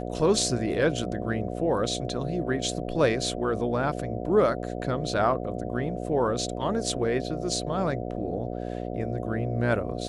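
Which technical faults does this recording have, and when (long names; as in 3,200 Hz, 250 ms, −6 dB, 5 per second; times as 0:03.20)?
mains buzz 60 Hz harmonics 12 −33 dBFS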